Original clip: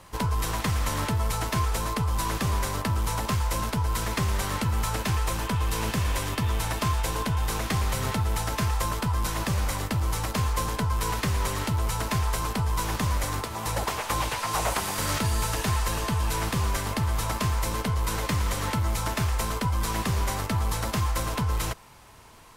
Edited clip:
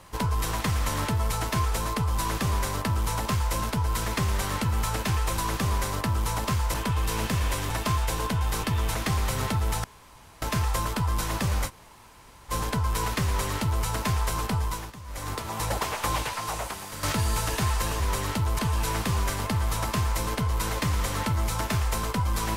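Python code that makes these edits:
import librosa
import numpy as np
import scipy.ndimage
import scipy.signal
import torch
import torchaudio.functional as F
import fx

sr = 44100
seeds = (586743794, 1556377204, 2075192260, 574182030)

y = fx.edit(x, sr, fx.duplicate(start_s=2.19, length_s=1.36, to_s=5.38),
    fx.move(start_s=6.34, length_s=0.32, to_s=7.59),
    fx.insert_room_tone(at_s=8.48, length_s=0.58),
    fx.room_tone_fill(start_s=9.74, length_s=0.83, crossfade_s=0.06),
    fx.duplicate(start_s=11.32, length_s=0.59, to_s=16.06),
    fx.fade_down_up(start_s=12.64, length_s=0.83, db=-16.5, fade_s=0.35),
    fx.fade_out_to(start_s=14.25, length_s=0.84, curve='qua', floor_db=-9.5), tone=tone)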